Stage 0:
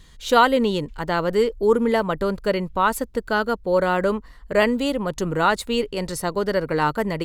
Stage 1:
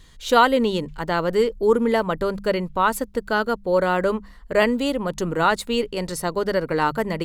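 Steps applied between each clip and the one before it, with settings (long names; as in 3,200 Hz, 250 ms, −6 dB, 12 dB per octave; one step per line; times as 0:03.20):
mains-hum notches 50/100/150/200 Hz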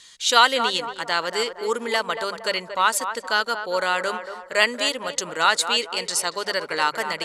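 meter weighting curve ITU-R 468
on a send: feedback echo with a band-pass in the loop 231 ms, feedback 47%, band-pass 740 Hz, level −7.5 dB
on the sum: level −1 dB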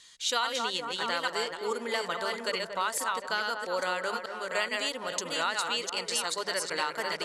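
delay that plays each chunk backwards 426 ms, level −4 dB
downward compressor 6 to 1, threshold −19 dBFS, peak gain reduction 10 dB
level −6.5 dB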